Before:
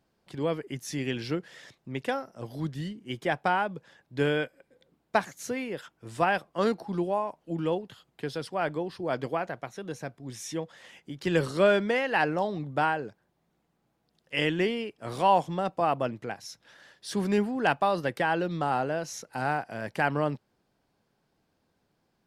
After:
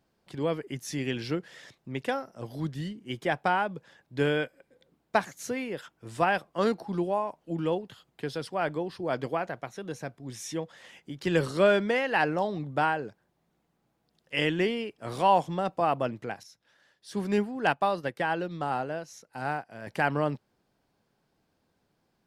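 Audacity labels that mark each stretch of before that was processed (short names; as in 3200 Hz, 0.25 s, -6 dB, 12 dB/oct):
16.430000	19.870000	upward expander, over -42 dBFS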